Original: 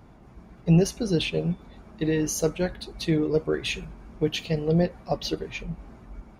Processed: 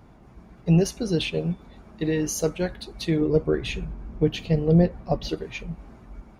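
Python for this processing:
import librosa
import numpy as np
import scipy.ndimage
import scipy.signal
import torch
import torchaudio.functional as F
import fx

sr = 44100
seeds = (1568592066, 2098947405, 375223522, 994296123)

y = fx.tilt_eq(x, sr, slope=-2.0, at=(3.21, 5.29))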